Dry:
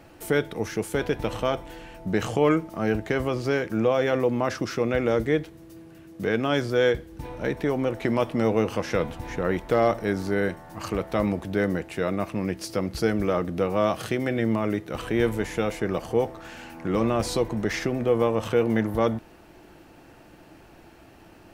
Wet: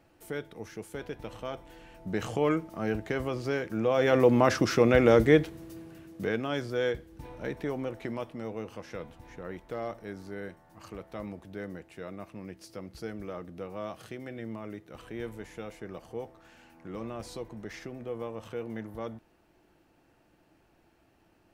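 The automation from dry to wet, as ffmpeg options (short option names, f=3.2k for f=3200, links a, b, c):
-af "volume=3dB,afade=t=in:st=1.4:d=0.94:silence=0.446684,afade=t=in:st=3.84:d=0.47:silence=0.354813,afade=t=out:st=5.43:d=1.02:silence=0.281838,afade=t=out:st=7.72:d=0.67:silence=0.446684"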